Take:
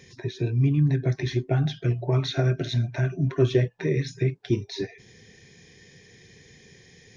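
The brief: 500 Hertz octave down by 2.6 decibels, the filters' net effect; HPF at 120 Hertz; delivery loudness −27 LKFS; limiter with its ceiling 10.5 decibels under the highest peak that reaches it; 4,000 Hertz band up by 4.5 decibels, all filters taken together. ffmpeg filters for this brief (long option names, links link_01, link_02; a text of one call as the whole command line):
ffmpeg -i in.wav -af "highpass=120,equalizer=frequency=500:width_type=o:gain=-4,equalizer=frequency=4000:width_type=o:gain=5,volume=4dB,alimiter=limit=-17.5dB:level=0:latency=1" out.wav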